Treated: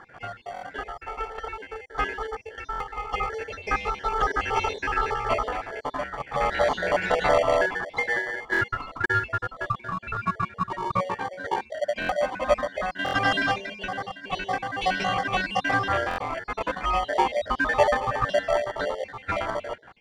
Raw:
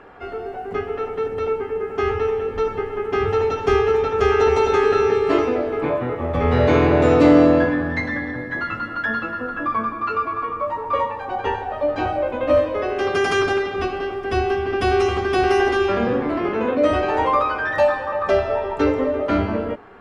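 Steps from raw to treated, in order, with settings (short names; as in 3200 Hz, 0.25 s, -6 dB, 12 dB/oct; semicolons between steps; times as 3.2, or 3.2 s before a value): random spectral dropouts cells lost 54%; steep high-pass 620 Hz 36 dB/oct; in parallel at -6.5 dB: sample-and-hold 34×; on the sum: air absorption 78 m; stuck buffer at 0.54/2.71/8.52/12/13.04/16.09, samples 1024, times 3; gain +2 dB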